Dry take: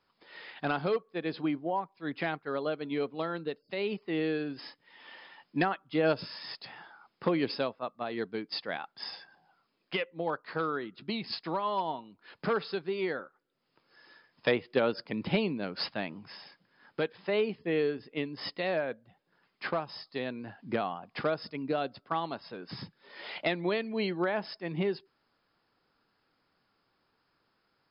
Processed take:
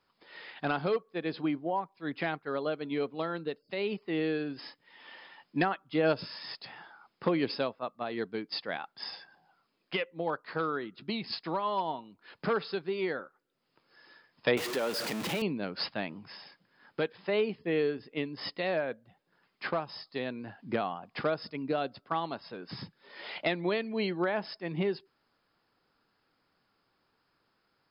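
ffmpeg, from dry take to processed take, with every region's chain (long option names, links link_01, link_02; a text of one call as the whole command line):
ffmpeg -i in.wav -filter_complex "[0:a]asettb=1/sr,asplit=3[link_01][link_02][link_03];[link_01]atrim=end=14.574[link_04];[link_02]atrim=start=14.57:end=15.42,asetpts=PTS-STARTPTS,afade=type=in:duration=0.004:curve=qsin,afade=type=out:start_time=0.846:duration=0.004:curve=qsin,aeval=exprs='val(0)+0.5*0.0376*sgn(val(0))':channel_layout=same,highpass=frequency=310:poles=1,acompressor=threshold=-31dB:ratio=2:attack=3.2:release=140:knee=1:detection=peak[link_05];[link_03]atrim=start=15.416[link_06];[link_04][link_05]acrossfade=duration=0.004:curve1=hsin:curve2=qsin[link_07];[link_07][link_06]acrossfade=duration=0.004:curve1=qsin:curve2=hsin" out.wav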